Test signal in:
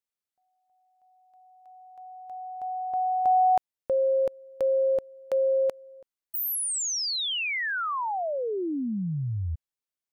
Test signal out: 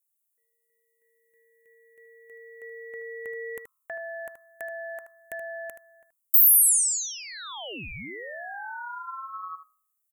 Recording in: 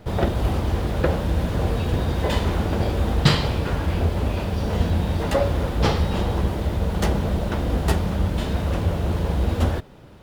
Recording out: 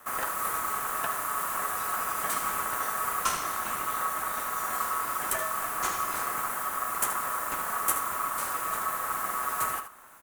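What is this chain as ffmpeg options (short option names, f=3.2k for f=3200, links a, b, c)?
-filter_complex "[0:a]bandreject=f=60.94:t=h:w=4,bandreject=f=121.88:t=h:w=4,bandreject=f=182.82:t=h:w=4,acrossover=split=310|1800[a][b][c];[a]acompressor=threshold=-27dB:ratio=1.5[d];[b]acompressor=threshold=-30dB:ratio=2.5[e];[c]acompressor=threshold=-33dB:ratio=2[f];[d][e][f]amix=inputs=3:normalize=0,aeval=exprs='val(0)*sin(2*PI*1200*n/s)':c=same,aexciter=amount=13.8:drive=3.6:freq=7k,asplit=2[g][h];[h]aecho=0:1:77:0.316[i];[g][i]amix=inputs=2:normalize=0,volume=-5dB"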